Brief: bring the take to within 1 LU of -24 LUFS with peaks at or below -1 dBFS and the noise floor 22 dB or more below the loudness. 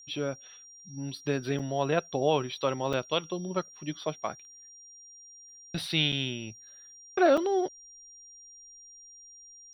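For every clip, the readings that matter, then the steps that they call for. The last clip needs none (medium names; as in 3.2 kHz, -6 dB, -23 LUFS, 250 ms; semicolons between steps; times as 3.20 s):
dropouts 4; longest dropout 5.1 ms; steady tone 5.7 kHz; tone level -49 dBFS; loudness -30.0 LUFS; peak level -12.5 dBFS; loudness target -24.0 LUFS
-> interpolate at 1.59/2.93/6.12/7.37 s, 5.1 ms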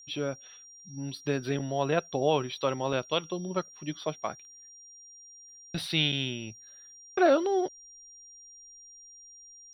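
dropouts 0; steady tone 5.7 kHz; tone level -49 dBFS
-> band-stop 5.7 kHz, Q 30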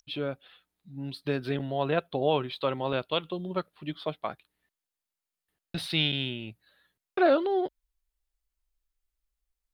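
steady tone not found; loudness -30.0 LUFS; peak level -12.5 dBFS; loudness target -24.0 LUFS
-> trim +6 dB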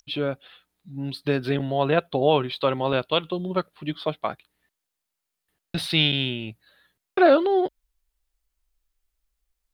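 loudness -24.0 LUFS; peak level -6.5 dBFS; noise floor -83 dBFS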